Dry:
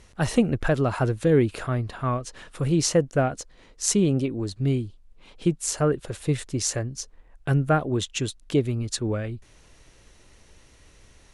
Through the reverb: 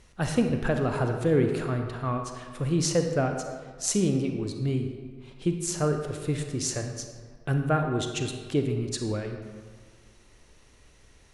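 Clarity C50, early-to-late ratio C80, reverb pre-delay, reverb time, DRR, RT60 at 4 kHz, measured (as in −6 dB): 5.5 dB, 7.0 dB, 32 ms, 1.7 s, 4.5 dB, 1.0 s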